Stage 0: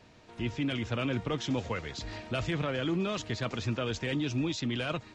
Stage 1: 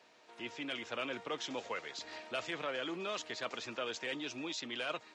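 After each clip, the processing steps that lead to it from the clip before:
high-pass filter 470 Hz 12 dB per octave
level −3 dB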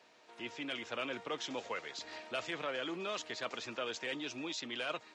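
no processing that can be heard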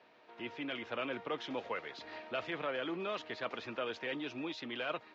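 high-frequency loss of the air 260 metres
level +2.5 dB

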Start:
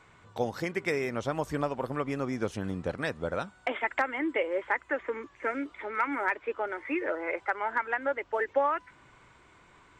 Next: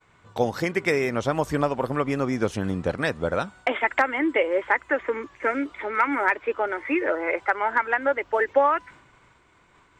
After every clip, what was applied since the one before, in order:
downward expander −51 dBFS
level +7 dB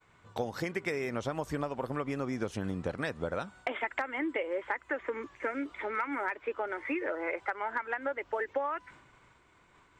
downward compressor 4 to 1, threshold −26 dBFS, peak gain reduction 10.5 dB
level −4.5 dB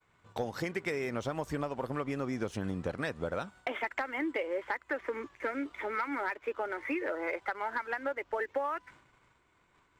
leveller curve on the samples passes 1
level −4 dB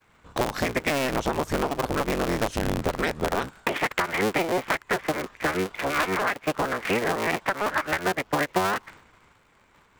sub-harmonics by changed cycles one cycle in 3, inverted
level +9 dB

